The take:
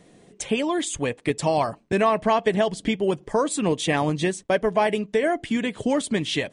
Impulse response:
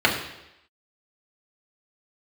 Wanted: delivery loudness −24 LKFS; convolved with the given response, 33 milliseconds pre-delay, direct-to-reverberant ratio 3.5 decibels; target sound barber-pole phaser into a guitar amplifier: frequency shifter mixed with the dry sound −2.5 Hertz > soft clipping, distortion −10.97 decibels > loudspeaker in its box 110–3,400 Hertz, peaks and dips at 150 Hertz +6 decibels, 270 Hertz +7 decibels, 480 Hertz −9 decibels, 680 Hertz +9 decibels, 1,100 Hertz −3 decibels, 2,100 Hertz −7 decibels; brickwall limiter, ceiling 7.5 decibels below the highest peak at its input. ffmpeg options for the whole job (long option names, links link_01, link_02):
-filter_complex "[0:a]alimiter=limit=-16dB:level=0:latency=1,asplit=2[link_01][link_02];[1:a]atrim=start_sample=2205,adelay=33[link_03];[link_02][link_03]afir=irnorm=-1:irlink=0,volume=-23dB[link_04];[link_01][link_04]amix=inputs=2:normalize=0,asplit=2[link_05][link_06];[link_06]afreqshift=-2.5[link_07];[link_05][link_07]amix=inputs=2:normalize=1,asoftclip=threshold=-26dB,highpass=110,equalizer=frequency=150:width_type=q:width=4:gain=6,equalizer=frequency=270:width_type=q:width=4:gain=7,equalizer=frequency=480:width_type=q:width=4:gain=-9,equalizer=frequency=680:width_type=q:width=4:gain=9,equalizer=frequency=1100:width_type=q:width=4:gain=-3,equalizer=frequency=2100:width_type=q:width=4:gain=-7,lowpass=frequency=3400:width=0.5412,lowpass=frequency=3400:width=1.3066,volume=5.5dB"